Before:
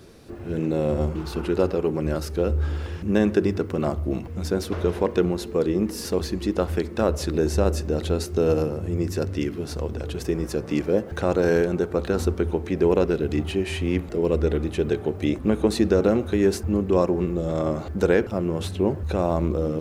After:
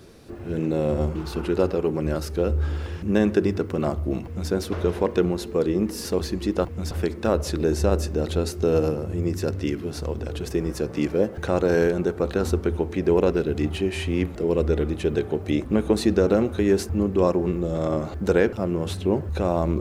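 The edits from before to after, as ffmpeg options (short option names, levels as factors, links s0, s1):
-filter_complex "[0:a]asplit=3[s0][s1][s2];[s0]atrim=end=6.652[s3];[s1]atrim=start=4.238:end=4.502[s4];[s2]atrim=start=6.648[s5];[s3][s4]acrossfade=d=0.004:c1=hsin:c2=hsin[s6];[s6][s5]acrossfade=d=0.004:c1=hsin:c2=hsin"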